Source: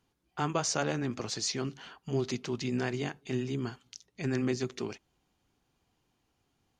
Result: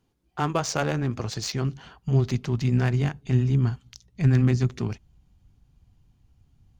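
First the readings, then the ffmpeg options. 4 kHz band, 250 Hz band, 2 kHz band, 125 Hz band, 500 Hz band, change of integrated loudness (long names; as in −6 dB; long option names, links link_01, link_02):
+1.5 dB, +6.5 dB, +4.0 dB, +15.0 dB, +3.0 dB, +8.5 dB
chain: -filter_complex "[0:a]asubboost=boost=10:cutoff=120,asplit=2[link_01][link_02];[link_02]adynamicsmooth=sensitivity=7.5:basefreq=840,volume=0dB[link_03];[link_01][link_03]amix=inputs=2:normalize=0"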